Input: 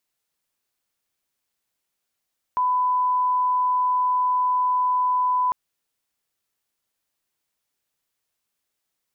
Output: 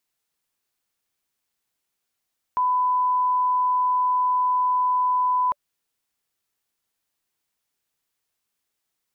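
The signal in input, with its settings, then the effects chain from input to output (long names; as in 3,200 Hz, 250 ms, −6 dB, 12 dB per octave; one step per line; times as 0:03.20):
line-up tone −18 dBFS 2.95 s
notch filter 580 Hz, Q 13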